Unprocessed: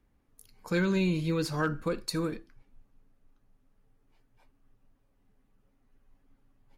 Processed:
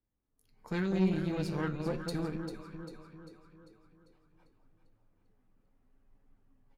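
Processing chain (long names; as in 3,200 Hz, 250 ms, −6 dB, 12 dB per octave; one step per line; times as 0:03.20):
high-shelf EQ 3,300 Hz −9 dB
delay that swaps between a low-pass and a high-pass 198 ms, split 910 Hz, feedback 70%, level −5.5 dB
dynamic equaliser 870 Hz, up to −6 dB, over −48 dBFS, Q 1.1
automatic gain control gain up to 14.5 dB
tube saturation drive 11 dB, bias 0.75
flanger 0.8 Hz, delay 8.9 ms, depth 4.9 ms, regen +75%
level −8.5 dB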